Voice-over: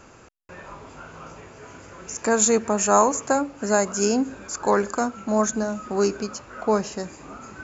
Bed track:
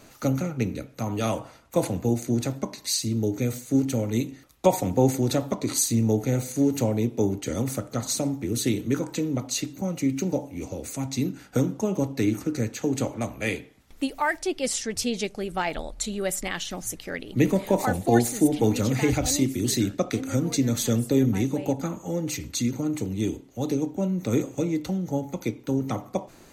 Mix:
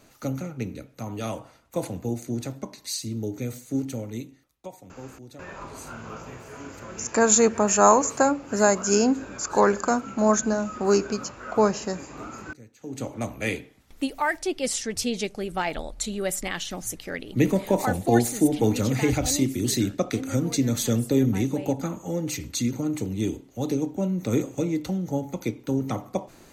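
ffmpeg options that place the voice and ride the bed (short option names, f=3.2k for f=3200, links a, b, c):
-filter_complex "[0:a]adelay=4900,volume=1dB[a];[1:a]volume=16.5dB,afade=t=out:st=3.8:d=0.9:silence=0.149624,afade=t=in:st=12.78:d=0.5:silence=0.0841395[b];[a][b]amix=inputs=2:normalize=0"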